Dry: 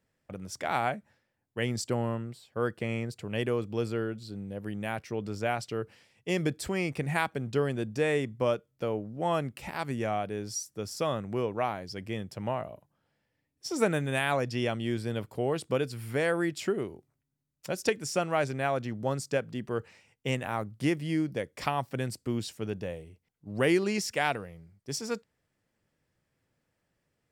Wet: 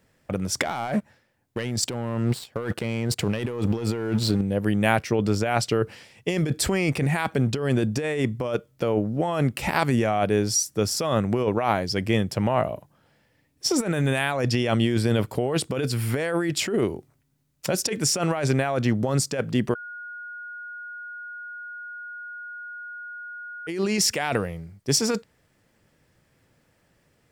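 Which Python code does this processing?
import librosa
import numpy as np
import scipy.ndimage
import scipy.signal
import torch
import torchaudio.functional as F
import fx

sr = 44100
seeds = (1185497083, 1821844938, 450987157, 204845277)

y = fx.leveller(x, sr, passes=2, at=(0.6, 4.41))
y = fx.edit(y, sr, fx.bleep(start_s=19.75, length_s=3.92, hz=1440.0, db=-11.5), tone=tone)
y = fx.over_compress(y, sr, threshold_db=-33.0, ratio=-1.0)
y = F.gain(torch.from_numpy(y), 5.0).numpy()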